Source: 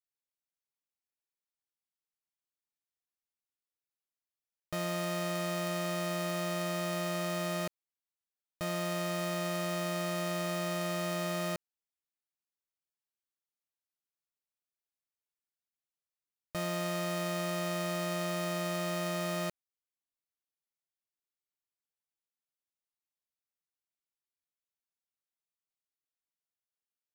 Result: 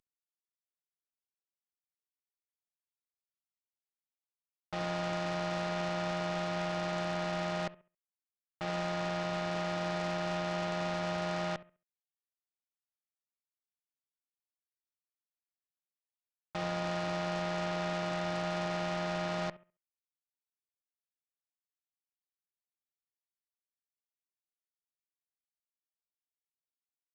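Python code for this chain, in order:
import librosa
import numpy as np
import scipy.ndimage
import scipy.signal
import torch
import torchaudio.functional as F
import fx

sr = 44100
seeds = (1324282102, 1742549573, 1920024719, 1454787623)

y = fx.cvsd(x, sr, bps=16000)
y = fx.room_flutter(y, sr, wall_m=11.6, rt60_s=0.31)
y = fx.cheby_harmonics(y, sr, harmonics=(3, 7), levels_db=(-22, -13), full_scale_db=-25.5)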